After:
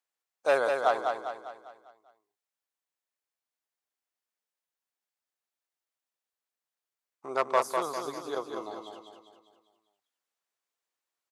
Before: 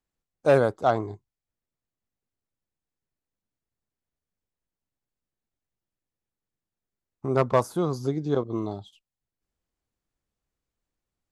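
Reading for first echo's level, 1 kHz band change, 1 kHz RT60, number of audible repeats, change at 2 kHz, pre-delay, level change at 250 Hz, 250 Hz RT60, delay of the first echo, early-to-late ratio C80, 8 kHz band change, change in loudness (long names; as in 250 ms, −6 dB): −5.0 dB, −0.5 dB, no reverb audible, 5, +1.5 dB, no reverb audible, −13.5 dB, no reverb audible, 200 ms, no reverb audible, +1.5 dB, −5.0 dB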